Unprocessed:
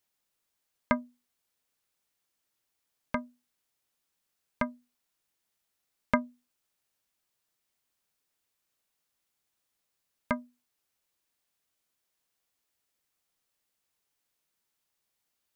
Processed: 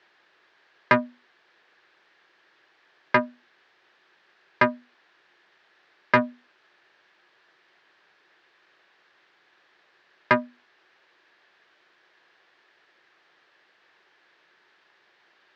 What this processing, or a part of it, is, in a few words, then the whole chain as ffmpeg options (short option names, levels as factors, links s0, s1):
overdrive pedal into a guitar cabinet: -filter_complex "[0:a]asplit=2[s0][s1];[s1]highpass=f=720:p=1,volume=50.1,asoftclip=type=tanh:threshold=0.422[s2];[s0][s2]amix=inputs=2:normalize=0,lowpass=f=1700:p=1,volume=0.501,highpass=94,equalizer=f=250:t=q:w=4:g=-6,equalizer=f=360:t=q:w=4:g=9,equalizer=f=1700:t=q:w=4:g=9,lowpass=f=4500:w=0.5412,lowpass=f=4500:w=1.3066"